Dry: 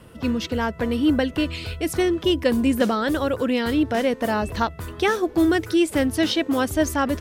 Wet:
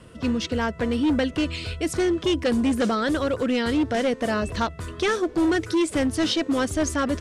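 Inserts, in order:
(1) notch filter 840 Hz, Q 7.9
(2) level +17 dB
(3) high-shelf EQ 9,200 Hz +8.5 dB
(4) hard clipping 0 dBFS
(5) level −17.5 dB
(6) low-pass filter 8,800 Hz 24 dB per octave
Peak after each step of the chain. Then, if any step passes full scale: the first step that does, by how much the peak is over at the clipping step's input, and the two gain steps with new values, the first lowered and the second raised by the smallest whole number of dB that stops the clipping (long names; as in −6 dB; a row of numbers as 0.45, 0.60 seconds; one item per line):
−7.0, +10.0, +10.0, 0.0, −17.5, −16.0 dBFS
step 2, 10.0 dB
step 2 +7 dB, step 5 −7.5 dB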